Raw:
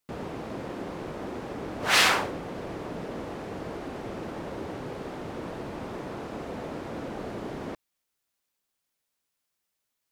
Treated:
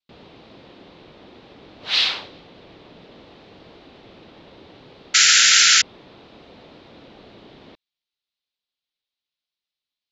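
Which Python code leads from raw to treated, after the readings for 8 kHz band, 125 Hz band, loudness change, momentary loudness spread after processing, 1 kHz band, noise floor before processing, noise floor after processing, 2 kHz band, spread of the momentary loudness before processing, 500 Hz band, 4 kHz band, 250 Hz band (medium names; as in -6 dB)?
+18.5 dB, under -10 dB, +17.5 dB, 13 LU, -1.0 dB, -82 dBFS, under -85 dBFS, +8.0 dB, 14 LU, -10.5 dB, +14.0 dB, -10.5 dB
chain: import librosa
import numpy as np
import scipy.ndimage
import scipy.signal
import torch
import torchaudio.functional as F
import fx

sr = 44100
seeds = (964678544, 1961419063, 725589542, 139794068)

y = fx.curve_eq(x, sr, hz=(1600.0, 3900.0, 9200.0), db=(0, 15, -17))
y = fx.vibrato(y, sr, rate_hz=0.64, depth_cents=18.0)
y = fx.dynamic_eq(y, sr, hz=4400.0, q=0.92, threshold_db=-39.0, ratio=4.0, max_db=5)
y = fx.spec_paint(y, sr, seeds[0], shape='noise', start_s=5.14, length_s=0.68, low_hz=1300.0, high_hz=7400.0, level_db=-3.0)
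y = F.gain(torch.from_numpy(y), -10.5).numpy()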